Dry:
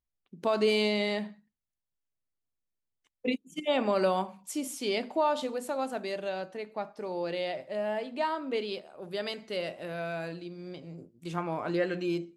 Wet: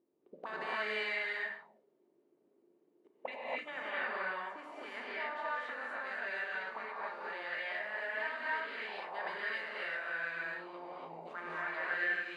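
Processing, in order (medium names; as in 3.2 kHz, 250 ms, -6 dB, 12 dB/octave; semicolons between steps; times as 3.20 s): spectral levelling over time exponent 0.6; 3.70–6.07 s: treble shelf 3.6 kHz -8 dB; auto-wah 340–1700 Hz, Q 6.9, up, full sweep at -26.5 dBFS; gated-style reverb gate 310 ms rising, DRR -6.5 dB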